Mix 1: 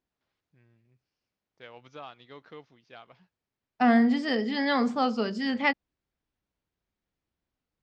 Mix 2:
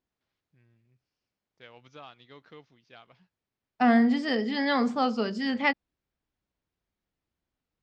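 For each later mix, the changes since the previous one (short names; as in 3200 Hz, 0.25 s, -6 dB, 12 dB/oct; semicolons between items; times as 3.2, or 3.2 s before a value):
first voice: add bell 690 Hz -4.5 dB 2.8 oct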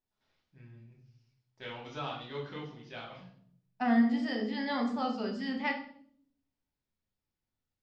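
second voice -11.0 dB; reverb: on, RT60 0.60 s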